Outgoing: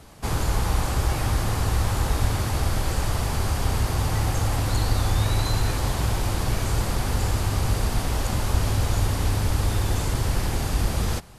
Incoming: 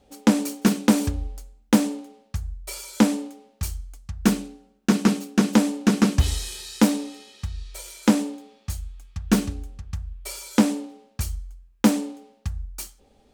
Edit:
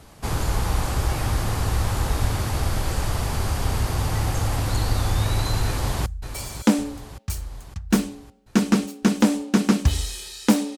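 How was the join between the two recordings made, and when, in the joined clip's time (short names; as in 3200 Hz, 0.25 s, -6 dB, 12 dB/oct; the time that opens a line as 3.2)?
outgoing
5.66–6.06 echo throw 0.56 s, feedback 60%, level -10.5 dB
6.06 switch to incoming from 2.39 s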